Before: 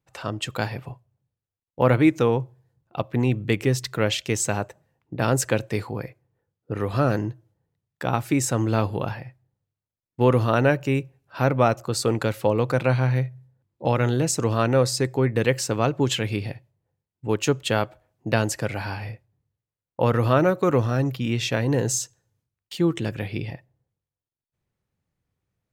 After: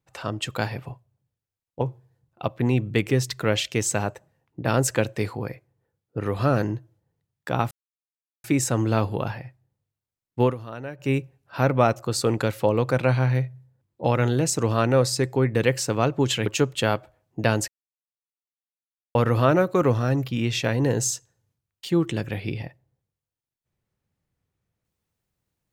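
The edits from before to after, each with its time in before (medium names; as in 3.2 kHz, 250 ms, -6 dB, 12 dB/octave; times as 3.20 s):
1.81–2.35 s: delete
8.25 s: insert silence 0.73 s
10.23–10.91 s: dip -16 dB, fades 0.13 s
16.27–17.34 s: delete
18.56–20.03 s: mute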